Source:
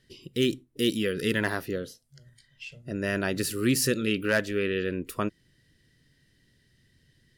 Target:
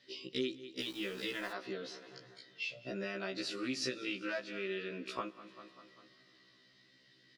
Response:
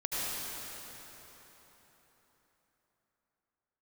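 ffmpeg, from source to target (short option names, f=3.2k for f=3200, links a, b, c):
-filter_complex "[0:a]highpass=390,equalizer=f=450:t=q:w=4:g=-7,equalizer=f=860:t=q:w=4:g=-5,equalizer=f=1.7k:t=q:w=4:g=-9,equalizer=f=3k:t=q:w=4:g=-6,lowpass=f=4.2k:w=0.5412,lowpass=f=4.2k:w=1.3066,aecho=1:1:197|394|591|788:0.0708|0.0418|0.0246|0.0145,acompressor=threshold=-42dB:ratio=12,aemphasis=mode=production:type=50kf,asplit=2[a][b];[1:a]atrim=start_sample=2205[c];[b][c]afir=irnorm=-1:irlink=0,volume=-27dB[d];[a][d]amix=inputs=2:normalize=0,asettb=1/sr,asplit=3[e][f][g];[e]atrim=end=0.804[h];[f]atrim=start=0.8:end=1.52,asetpts=PTS-STARTPTS,afade=t=in:d=0.004:c=qsin,afade=t=out:st=0.716:d=0.004:c=qsin,aeval=exprs='val(0)*gte(abs(val(0)),0.002)':c=same[i];[g]atrim=start=1.516[j];[h][i]acrossfade=d=0.004:c1=hsin:c2=qsin[k];[k][j]acrossfade=d=0.004:c1=qsin:c2=hsin,afftfilt=real='re*1.73*eq(mod(b,3),0)':imag='im*1.73*eq(mod(b,3),0)':win_size=2048:overlap=0.75,volume=8.5dB"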